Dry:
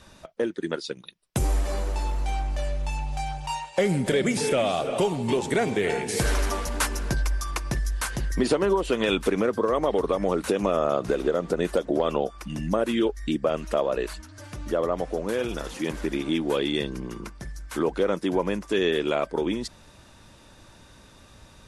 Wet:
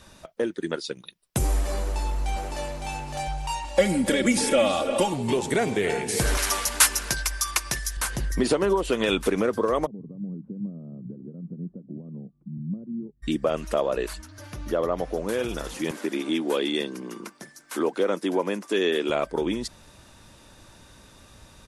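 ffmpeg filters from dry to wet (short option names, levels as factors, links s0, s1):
-filter_complex "[0:a]asplit=2[s0][s1];[s1]afade=t=in:st=1.8:d=0.01,afade=t=out:st=2.71:d=0.01,aecho=0:1:560|1120|1680|2240|2800:0.749894|0.262463|0.091862|0.0321517|0.0112531[s2];[s0][s2]amix=inputs=2:normalize=0,asettb=1/sr,asplit=3[s3][s4][s5];[s3]atrim=end=3.644[s6];[s4]atrim=start=3.64:end=5.14,asetpts=PTS-STARTPTS,afade=t=in:d=0.004:c=qsin,afade=t=out:st=1.496:d=0.004:c=qsin,aecho=1:1:3.6:0.82,atrim=end_sample=66150[s7];[s5]atrim=start=5.136[s8];[s6][s7]acrossfade=d=0.004:c1=hsin:c2=qsin[s9];[s9][s8]acrossfade=d=0.004:c1=qsin:c2=hsin,asettb=1/sr,asplit=3[s10][s11][s12];[s10]atrim=end=6.374[s13];[s11]atrim=start=6.37:end=7.97,asetpts=PTS-STARTPTS,afade=t=in:d=0.004:c=qsin,afade=t=out:st=1.596:d=0.004:c=qsin,tiltshelf=f=830:g=-8.5[s14];[s12]atrim=start=7.966[s15];[s13][s14]acrossfade=d=0.004:c1=hsin:c2=qsin[s16];[s16][s15]acrossfade=d=0.004:c1=qsin:c2=hsin,asplit=3[s17][s18][s19];[s17]afade=t=out:st=9.85:d=0.02[s20];[s18]asuperpass=centerf=170:order=4:qfactor=1.9,afade=t=in:st=9.85:d=0.02,afade=t=out:st=13.22:d=0.02[s21];[s19]afade=t=in:st=13.22:d=0.02[s22];[s20][s21][s22]amix=inputs=3:normalize=0,asettb=1/sr,asplit=3[s23][s24][s25];[s23]atrim=end=14.284[s26];[s24]atrim=start=14.28:end=15.16,asetpts=PTS-STARTPTS,afade=t=in:d=0.004:c=qsin,afade=t=out:st=0.876:d=0.004:c=qsin,equalizer=f=8100:w=3.6:g=-10.5[s27];[s25]atrim=start=15.156[s28];[s26][s27]acrossfade=d=0.004:c1=hsin:c2=qsin[s29];[s29][s28]acrossfade=d=0.004:c1=qsin:c2=hsin,asettb=1/sr,asplit=3[s30][s31][s32];[s30]atrim=end=15.914[s33];[s31]atrim=start=15.91:end=19.1,asetpts=PTS-STARTPTS,afade=t=in:d=0.004:c=qsin,afade=t=out:st=3.186:d=0.004:c=qsin,highpass=f=200:w=0.5412,highpass=f=200:w=1.3066[s34];[s32]atrim=start=19.096[s35];[s33][s34]acrossfade=d=0.004:c1=hsin:c2=qsin[s36];[s36][s35]acrossfade=d=0.004:c1=qsin:c2=hsin,highshelf=f=9000:g=7"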